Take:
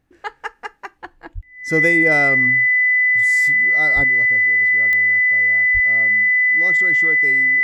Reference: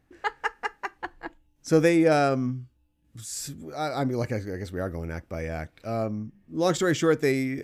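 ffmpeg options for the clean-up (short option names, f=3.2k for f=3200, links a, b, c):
-filter_complex "[0:a]adeclick=t=4,bandreject=f=2k:w=30,asplit=3[a][b][c];[a]afade=t=out:st=1.34:d=0.02[d];[b]highpass=f=140:w=0.5412,highpass=f=140:w=1.3066,afade=t=in:st=1.34:d=0.02,afade=t=out:st=1.46:d=0.02[e];[c]afade=t=in:st=1.46:d=0.02[f];[d][e][f]amix=inputs=3:normalize=0,asplit=3[g][h][i];[g]afade=t=out:st=3.95:d=0.02[j];[h]highpass=f=140:w=0.5412,highpass=f=140:w=1.3066,afade=t=in:st=3.95:d=0.02,afade=t=out:st=4.07:d=0.02[k];[i]afade=t=in:st=4.07:d=0.02[l];[j][k][l]amix=inputs=3:normalize=0,asplit=3[m][n][o];[m]afade=t=out:st=5.73:d=0.02[p];[n]highpass=f=140:w=0.5412,highpass=f=140:w=1.3066,afade=t=in:st=5.73:d=0.02,afade=t=out:st=5.85:d=0.02[q];[o]afade=t=in:st=5.85:d=0.02[r];[p][q][r]amix=inputs=3:normalize=0,asetnsamples=n=441:p=0,asendcmd='4.04 volume volume 10dB',volume=0dB"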